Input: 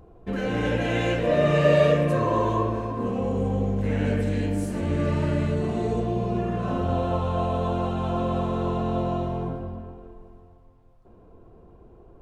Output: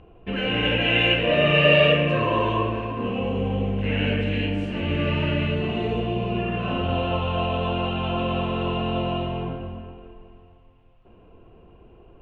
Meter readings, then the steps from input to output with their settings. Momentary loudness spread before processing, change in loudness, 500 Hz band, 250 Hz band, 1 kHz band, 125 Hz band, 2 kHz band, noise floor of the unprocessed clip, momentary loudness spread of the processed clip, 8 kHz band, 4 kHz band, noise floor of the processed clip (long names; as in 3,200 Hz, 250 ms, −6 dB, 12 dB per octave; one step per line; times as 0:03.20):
8 LU, +2.0 dB, +0.5 dB, 0.0 dB, +1.0 dB, 0.0 dB, +9.0 dB, −52 dBFS, 10 LU, below −15 dB, +14.0 dB, −52 dBFS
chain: low-pass with resonance 2,800 Hz, resonance Q 7.8